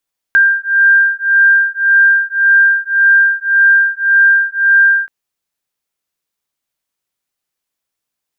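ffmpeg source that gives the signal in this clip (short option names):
-f lavfi -i "aevalsrc='0.299*(sin(2*PI*1590*t)+sin(2*PI*1591.8*t))':d=4.73:s=44100"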